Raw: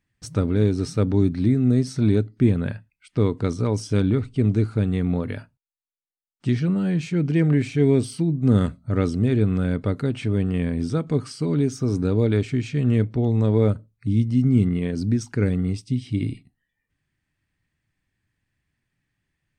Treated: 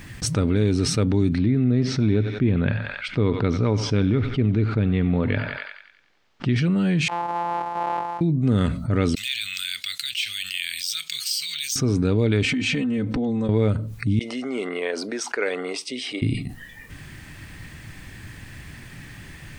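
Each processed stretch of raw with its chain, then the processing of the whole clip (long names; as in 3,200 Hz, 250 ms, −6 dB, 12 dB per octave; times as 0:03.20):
0:01.38–0:06.56: high-frequency loss of the air 210 metres + feedback echo with a high-pass in the loop 92 ms, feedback 52%, high-pass 1,000 Hz, level −13 dB
0:07.08–0:08.21: samples sorted by size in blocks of 256 samples + resonant band-pass 890 Hz, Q 7.3 + downward compressor 1.5 to 1, threshold −49 dBFS
0:09.15–0:11.76: inverse Chebyshev high-pass filter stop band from 900 Hz, stop band 60 dB + linearly interpolated sample-rate reduction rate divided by 2×
0:12.44–0:13.49: comb filter 3.9 ms, depth 99% + downward compressor, threshold −31 dBFS
0:14.19–0:16.22: high-pass filter 510 Hz 24 dB per octave + high-shelf EQ 3,300 Hz −11 dB + expander for the loud parts, over −46 dBFS
whole clip: dynamic equaliser 2,700 Hz, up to +7 dB, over −48 dBFS, Q 1; envelope flattener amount 70%; level −4 dB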